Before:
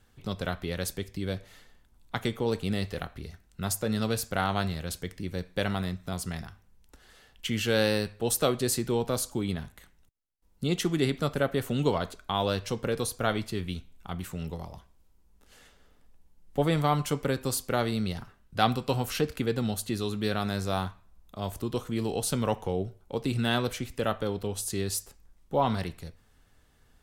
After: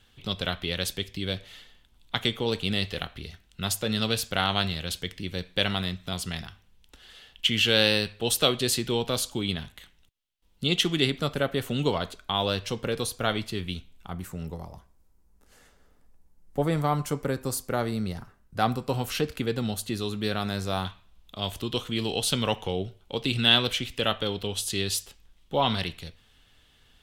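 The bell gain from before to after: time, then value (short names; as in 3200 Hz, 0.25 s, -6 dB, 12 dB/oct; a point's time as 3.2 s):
bell 3200 Hz 1 oct
+13 dB
from 11.07 s +6.5 dB
from 14.08 s -5.5 dB
from 18.94 s +4 dB
from 20.85 s +15 dB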